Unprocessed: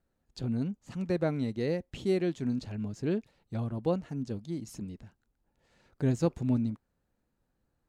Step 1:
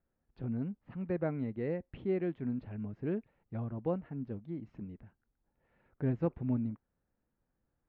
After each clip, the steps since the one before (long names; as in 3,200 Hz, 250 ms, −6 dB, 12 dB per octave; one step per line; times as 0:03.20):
low-pass filter 2,300 Hz 24 dB per octave
level −4.5 dB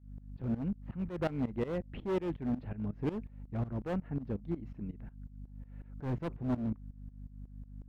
mains hum 50 Hz, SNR 12 dB
hard clipping −33 dBFS, distortion −9 dB
shaped tremolo saw up 5.5 Hz, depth 90%
level +7 dB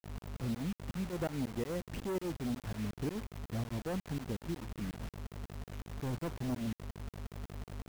downward compressor 4 to 1, threshold −37 dBFS, peak gain reduction 8 dB
bit-depth reduction 8 bits, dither none
level +2.5 dB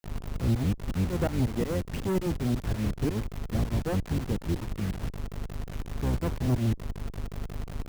sub-octave generator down 1 octave, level +2 dB
level +6.5 dB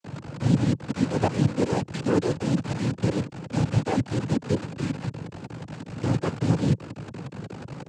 cochlear-implant simulation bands 8
level +5.5 dB